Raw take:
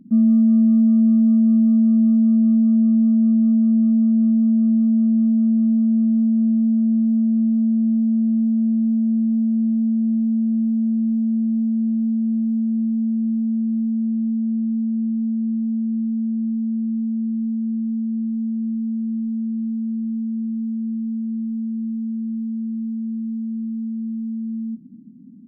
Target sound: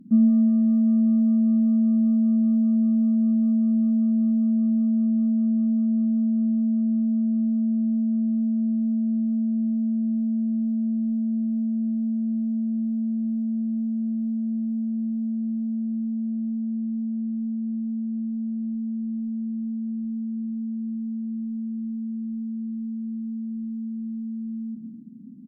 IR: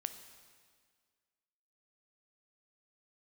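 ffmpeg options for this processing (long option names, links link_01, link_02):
-filter_complex "[0:a]aecho=1:1:186|372|558|744|930|1116:0.178|0.103|0.0598|0.0347|0.0201|0.0117[link_01];[1:a]atrim=start_sample=2205,afade=type=out:start_time=0.2:duration=0.01,atrim=end_sample=9261,asetrate=37044,aresample=44100[link_02];[link_01][link_02]afir=irnorm=-1:irlink=0"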